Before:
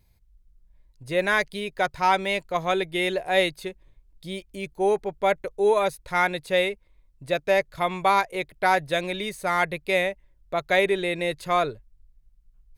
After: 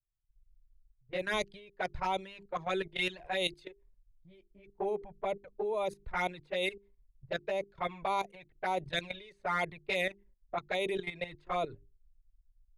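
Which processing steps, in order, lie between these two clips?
flanger swept by the level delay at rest 6.8 ms, full sweep at −17.5 dBFS
mains-hum notches 50/100/150/200/250/300/350/400 Hz
in parallel at +2 dB: downward compressor 16 to 1, threshold −32 dBFS, peak gain reduction 16 dB
on the sum: low-pass that shuts in the quiet parts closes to 930 Hz, open at −18 dBFS
output level in coarse steps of 13 dB
multiband upward and downward expander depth 100%
level −6 dB

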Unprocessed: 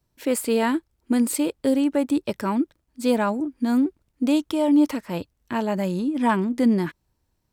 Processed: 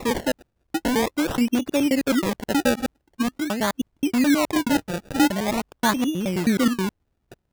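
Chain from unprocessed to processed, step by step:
slices reordered back to front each 106 ms, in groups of 5
sample-and-hold swept by an LFO 28×, swing 100% 0.45 Hz

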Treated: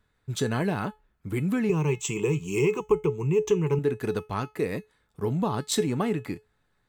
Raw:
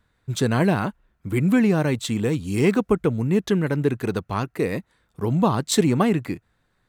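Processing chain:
0:01.69–0:03.79: EQ curve with evenly spaced ripples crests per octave 0.73, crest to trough 18 dB
downward compressor 3 to 1, threshold −19 dBFS, peak gain reduction 9 dB
tuned comb filter 430 Hz, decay 0.22 s, harmonics all, mix 70%
level +5 dB

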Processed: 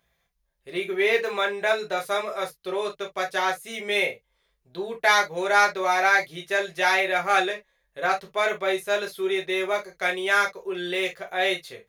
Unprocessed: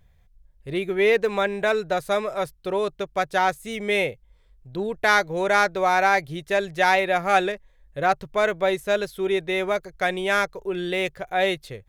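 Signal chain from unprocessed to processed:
high-pass filter 720 Hz 6 dB per octave
notch filter 7,800 Hz, Q 8.4
convolution reverb, pre-delay 3 ms, DRR 0 dB
level −1.5 dB

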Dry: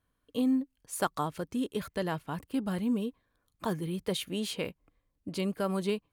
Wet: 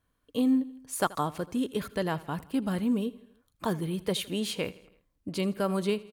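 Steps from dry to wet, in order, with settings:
repeating echo 81 ms, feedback 56%, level −20 dB
level +2.5 dB

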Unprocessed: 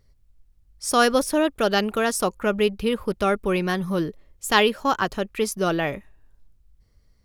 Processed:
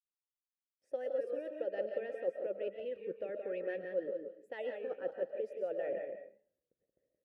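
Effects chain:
fade in at the beginning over 1.87 s
noise gate with hold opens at −47 dBFS
high-pass filter 370 Hz 6 dB per octave
tilt shelving filter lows +9 dB, about 900 Hz
harmonic and percussive parts rebalanced harmonic −11 dB
parametric band 5,700 Hz −11 dB 2.7 octaves
reversed playback
downward compressor, threshold −33 dBFS, peak gain reduction 15 dB
reversed playback
formant filter e
single-tap delay 174 ms −6.5 dB
on a send at −7 dB: convolution reverb RT60 0.35 s, pre-delay 90 ms
on the sum: wow of a warped record 33 1/3 rpm, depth 100 cents
level +5.5 dB

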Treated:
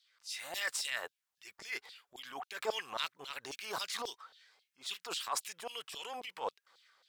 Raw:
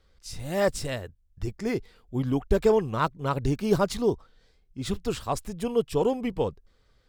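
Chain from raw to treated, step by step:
auto-filter high-pass saw down 3.7 Hz 700–4,200 Hz
transient designer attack −9 dB, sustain +5 dB
level −1.5 dB

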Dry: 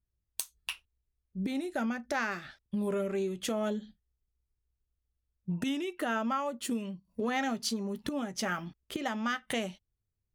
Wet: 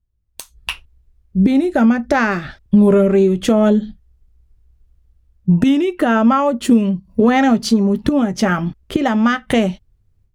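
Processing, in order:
spectral tilt −2.5 dB per octave
automatic gain control gain up to 16.5 dB
level +1 dB

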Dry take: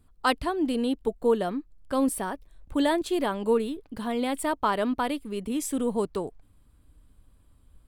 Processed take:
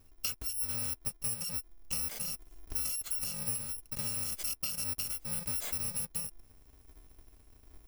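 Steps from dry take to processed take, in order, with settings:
samples in bit-reversed order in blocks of 128 samples
downward compressor 12 to 1, threshold −32 dBFS, peak gain reduction 15 dB

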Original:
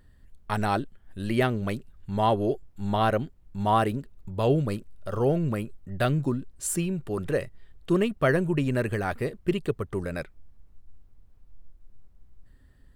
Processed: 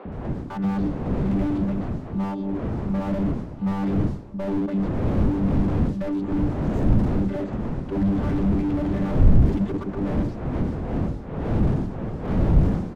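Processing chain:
channel vocoder with a chord as carrier bare fifth, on G3
wind on the microphone 300 Hz −26 dBFS
0:01.58–0:03.02: downward compressor 3 to 1, threshold −30 dBFS, peak gain reduction 8 dB
three-band delay without the direct sound mids, lows, highs 50/120 ms, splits 400/3,800 Hz
slew-rate limiting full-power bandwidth 10 Hz
level +7.5 dB

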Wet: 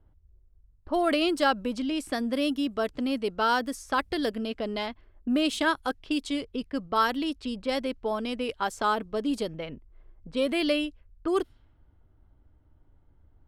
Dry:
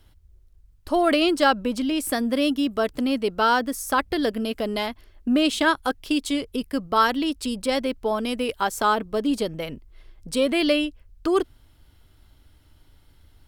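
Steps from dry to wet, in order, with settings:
0:03.49–0:04.29: high-shelf EQ 3,600 Hz +4 dB
low-pass that shuts in the quiet parts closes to 920 Hz, open at −19 dBFS
level −5 dB

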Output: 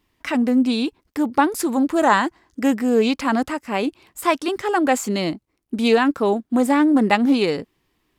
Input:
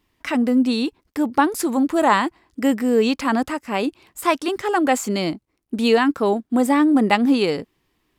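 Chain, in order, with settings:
0:02.02–0:02.62: thirty-one-band graphic EQ 1,600 Hz +4 dB, 2,500 Hz −4 dB, 6,300 Hz +8 dB
highs frequency-modulated by the lows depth 0.11 ms

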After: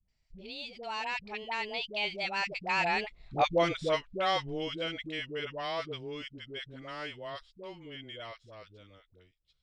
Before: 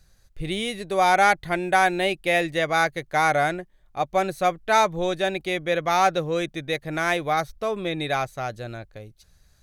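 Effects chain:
source passing by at 0:03.35, 58 m/s, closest 12 metres
low-pass filter 7,000 Hz 24 dB per octave
flat-topped bell 3,200 Hz +8 dB 1.3 octaves
downward compressor 1.5 to 1, threshold −41 dBFS, peak gain reduction 8 dB
all-pass dispersion highs, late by 85 ms, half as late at 540 Hz
level +6 dB

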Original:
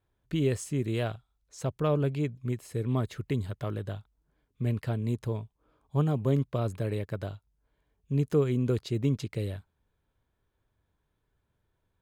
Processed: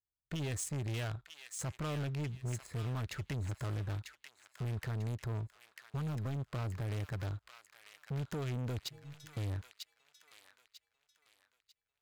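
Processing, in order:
adaptive Wiener filter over 15 samples
noise gate −55 dBFS, range −19 dB
guitar amp tone stack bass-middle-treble 5-5-5
downward compressor, threshold −46 dBFS, peak gain reduction 9 dB
in parallel at −1 dB: brickwall limiter −45 dBFS, peak gain reduction 8.5 dB
on the sum: leveller curve on the samples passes 2
0:08.89–0:09.37: stiff-string resonator 150 Hz, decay 0.72 s, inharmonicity 0.008
soft clipping −39.5 dBFS, distortion −18 dB
on a send: delay with a high-pass on its return 945 ms, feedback 33%, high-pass 1,600 Hz, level −5 dB
on the sum: level +6.5 dB

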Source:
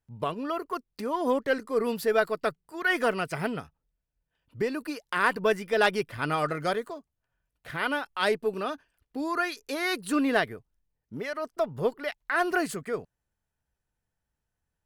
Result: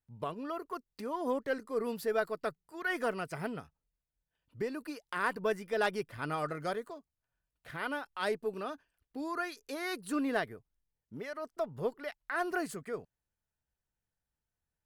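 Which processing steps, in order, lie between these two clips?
dynamic equaliser 2,900 Hz, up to −4 dB, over −43 dBFS, Q 1.1
level −7 dB

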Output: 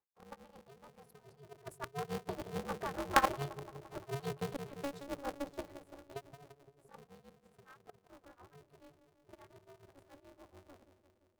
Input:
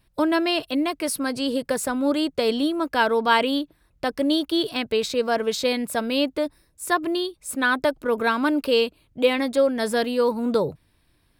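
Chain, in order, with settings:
spectral magnitudes quantised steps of 15 dB
source passing by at 0:03.42, 14 m/s, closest 5.4 metres
high-pass filter 240 Hz 24 dB per octave
high shelf with overshoot 1,700 Hz −11.5 dB, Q 1.5
mains-hum notches 60/120/180/240/300/360 Hz
output level in coarse steps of 19 dB
amplitude tremolo 7 Hz, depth 95%
delay with a low-pass on its return 172 ms, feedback 68%, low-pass 420 Hz, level −7.5 dB
ring modulator with a square carrier 140 Hz
level +2 dB

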